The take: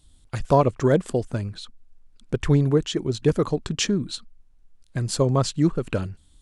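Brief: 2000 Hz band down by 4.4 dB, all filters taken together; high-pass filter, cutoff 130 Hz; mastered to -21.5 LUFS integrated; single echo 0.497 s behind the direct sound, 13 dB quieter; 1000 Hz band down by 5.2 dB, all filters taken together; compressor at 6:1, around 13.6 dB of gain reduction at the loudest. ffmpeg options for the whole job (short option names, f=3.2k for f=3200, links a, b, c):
-af "highpass=130,equalizer=f=1k:t=o:g=-6,equalizer=f=2k:t=o:g=-4,acompressor=threshold=-30dB:ratio=6,aecho=1:1:497:0.224,volume=14dB"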